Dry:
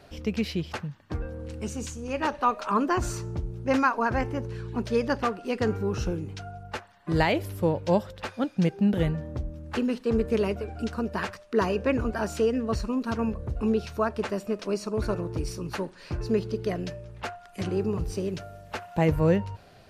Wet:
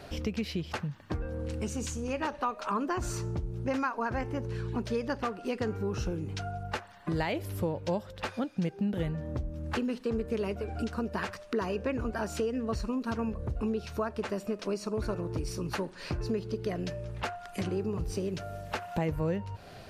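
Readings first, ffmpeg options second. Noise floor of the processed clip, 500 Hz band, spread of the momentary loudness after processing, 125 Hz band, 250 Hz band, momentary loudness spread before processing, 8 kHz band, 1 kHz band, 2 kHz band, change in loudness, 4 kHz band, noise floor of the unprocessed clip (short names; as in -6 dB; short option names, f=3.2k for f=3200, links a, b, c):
-48 dBFS, -6.0 dB, 5 LU, -4.0 dB, -5.5 dB, 12 LU, -2.0 dB, -6.0 dB, -5.5 dB, -5.5 dB, -3.5 dB, -52 dBFS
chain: -af "acompressor=threshold=-38dB:ratio=3,volume=5.5dB"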